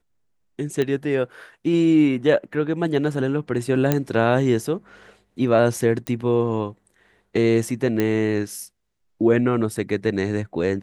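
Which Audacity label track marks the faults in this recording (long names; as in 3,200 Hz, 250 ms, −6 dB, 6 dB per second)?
0.820000	0.820000	click −12 dBFS
3.920000	3.920000	click −5 dBFS
6.070000	6.070000	click −13 dBFS
8.000000	8.000000	click −9 dBFS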